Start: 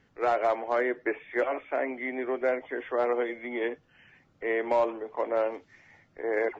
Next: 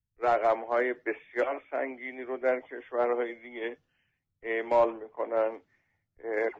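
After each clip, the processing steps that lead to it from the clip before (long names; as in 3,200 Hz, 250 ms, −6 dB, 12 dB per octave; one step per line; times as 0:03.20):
multiband upward and downward expander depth 100%
level −1.5 dB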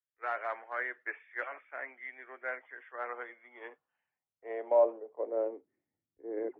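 band-pass filter sweep 1,600 Hz → 310 Hz, 0:03.01–0:05.91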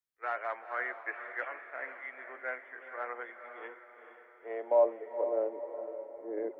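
feedback delay with all-pass diffusion 465 ms, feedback 47%, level −9 dB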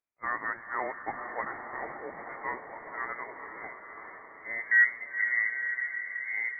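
feedback delay with all-pass diffusion 913 ms, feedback 40%, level −9 dB
voice inversion scrambler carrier 2,500 Hz
level +2.5 dB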